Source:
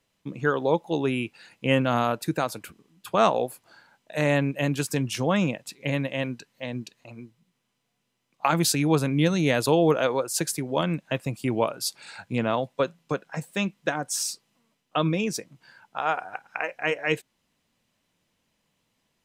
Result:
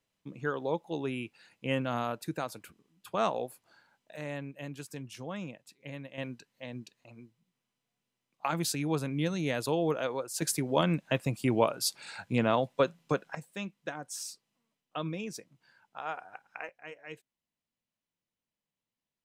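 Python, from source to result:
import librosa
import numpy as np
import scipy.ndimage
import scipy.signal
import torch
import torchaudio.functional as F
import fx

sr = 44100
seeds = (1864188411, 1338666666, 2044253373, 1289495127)

y = fx.gain(x, sr, db=fx.steps((0.0, -9.0), (4.16, -16.0), (6.18, -9.0), (10.42, -1.5), (13.35, -11.5), (16.69, -20.0)))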